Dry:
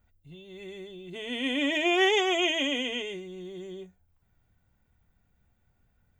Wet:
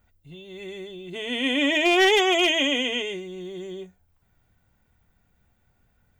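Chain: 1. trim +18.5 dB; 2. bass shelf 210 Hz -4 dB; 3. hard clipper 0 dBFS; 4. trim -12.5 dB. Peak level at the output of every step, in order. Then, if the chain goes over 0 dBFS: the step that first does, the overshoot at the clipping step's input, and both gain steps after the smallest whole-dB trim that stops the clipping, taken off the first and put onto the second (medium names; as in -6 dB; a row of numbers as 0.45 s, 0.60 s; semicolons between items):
+6.0 dBFS, +6.5 dBFS, 0.0 dBFS, -12.5 dBFS; step 1, 6.5 dB; step 1 +11.5 dB, step 4 -5.5 dB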